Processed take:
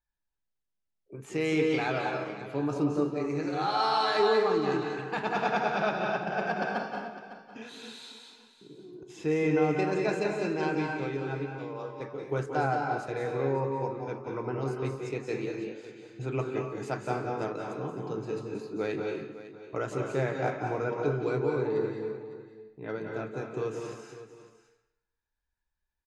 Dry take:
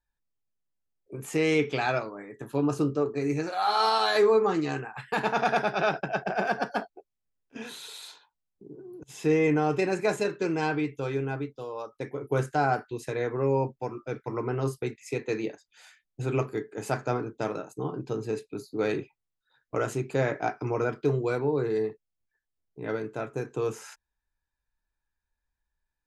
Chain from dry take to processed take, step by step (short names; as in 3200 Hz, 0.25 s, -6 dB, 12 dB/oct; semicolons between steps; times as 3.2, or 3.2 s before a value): LPF 6400 Hz 12 dB/oct; echo 0.555 s -14.5 dB; reverb RT60 0.85 s, pre-delay 0.169 s, DRR 1.5 dB; gain -4.5 dB